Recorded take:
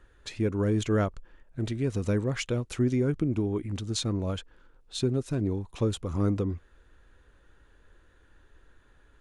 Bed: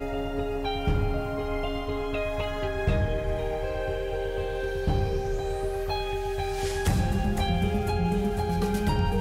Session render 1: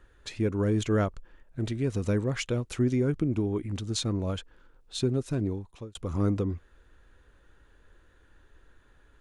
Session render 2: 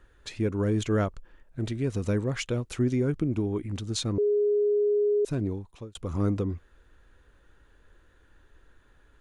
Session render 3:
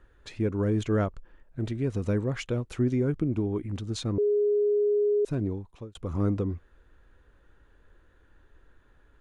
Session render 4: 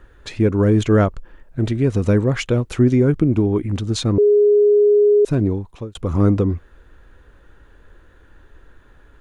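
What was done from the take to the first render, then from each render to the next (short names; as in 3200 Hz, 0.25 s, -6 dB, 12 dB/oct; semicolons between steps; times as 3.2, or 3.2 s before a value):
5.39–5.95 fade out
4.18–5.25 bleep 414 Hz -20.5 dBFS
high shelf 3000 Hz -8 dB
gain +11 dB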